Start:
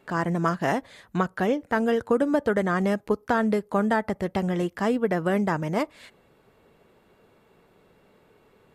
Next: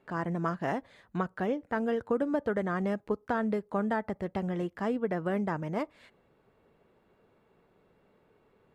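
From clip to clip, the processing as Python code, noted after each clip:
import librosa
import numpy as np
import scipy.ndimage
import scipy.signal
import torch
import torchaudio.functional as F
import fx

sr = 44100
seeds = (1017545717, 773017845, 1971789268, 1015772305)

y = fx.high_shelf(x, sr, hz=4000.0, db=-11.0)
y = F.gain(torch.from_numpy(y), -6.5).numpy()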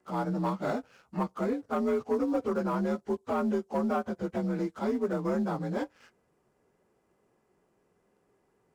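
y = fx.partial_stretch(x, sr, pct=87)
y = fx.leveller(y, sr, passes=1)
y = fx.bass_treble(y, sr, bass_db=-1, treble_db=10)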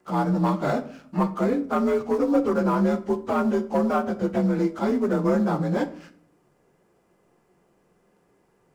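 y = fx.room_shoebox(x, sr, seeds[0], volume_m3=720.0, walls='furnished', distance_m=0.82)
y = F.gain(torch.from_numpy(y), 6.5).numpy()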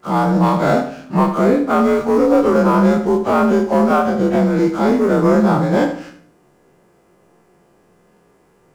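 y = fx.spec_dilate(x, sr, span_ms=60)
y = fx.echo_feedback(y, sr, ms=76, feedback_pct=30, wet_db=-10)
y = F.gain(torch.from_numpy(y), 5.5).numpy()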